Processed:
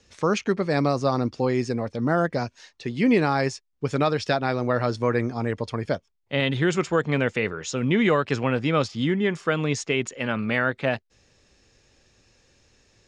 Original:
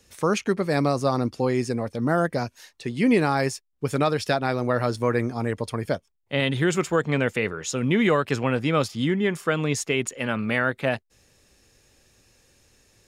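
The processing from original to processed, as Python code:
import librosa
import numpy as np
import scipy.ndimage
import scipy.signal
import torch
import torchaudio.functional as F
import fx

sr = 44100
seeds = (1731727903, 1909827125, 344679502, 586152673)

y = scipy.signal.sosfilt(scipy.signal.butter(4, 6700.0, 'lowpass', fs=sr, output='sos'), x)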